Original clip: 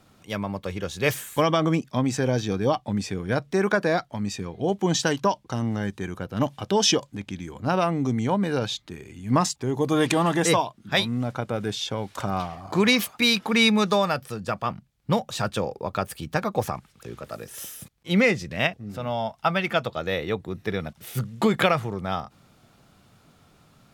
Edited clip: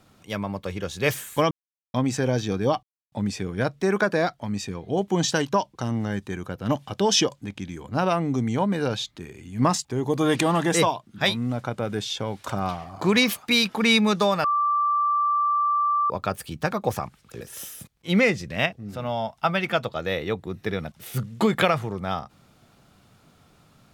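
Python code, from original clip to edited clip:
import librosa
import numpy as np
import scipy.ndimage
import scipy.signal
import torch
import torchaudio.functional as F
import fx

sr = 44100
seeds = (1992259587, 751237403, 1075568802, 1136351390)

y = fx.edit(x, sr, fx.silence(start_s=1.51, length_s=0.43),
    fx.insert_silence(at_s=2.83, length_s=0.29),
    fx.bleep(start_s=14.15, length_s=1.66, hz=1170.0, db=-19.0),
    fx.cut(start_s=17.12, length_s=0.3), tone=tone)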